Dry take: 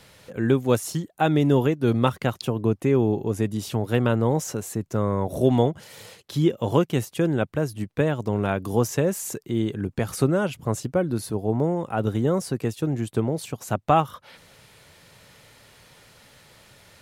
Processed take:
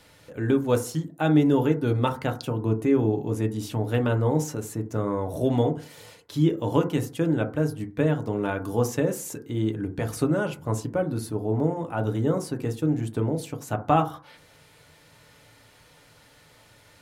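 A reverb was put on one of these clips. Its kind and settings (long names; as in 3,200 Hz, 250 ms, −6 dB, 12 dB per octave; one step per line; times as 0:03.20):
feedback delay network reverb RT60 0.38 s, low-frequency decay 1.1×, high-frequency decay 0.3×, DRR 4.5 dB
level −4 dB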